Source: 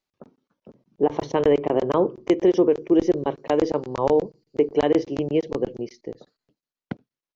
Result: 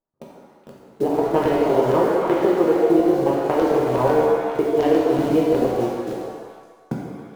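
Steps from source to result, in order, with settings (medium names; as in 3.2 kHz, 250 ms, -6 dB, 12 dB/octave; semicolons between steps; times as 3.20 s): local Wiener filter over 15 samples; level-controlled noise filter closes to 1.1 kHz, open at -13.5 dBFS; in parallel at -6 dB: bit crusher 6-bit; on the sum: repeats whose band climbs or falls 140 ms, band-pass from 430 Hz, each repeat 1.4 oct, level -6 dB; compression, threshold -18 dBFS, peak gain reduction 9 dB; 2.41–2.81 s: peaking EQ 1.3 kHz +12 dB 0.77 oct; pitch-shifted reverb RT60 1.2 s, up +7 st, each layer -8 dB, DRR -3.5 dB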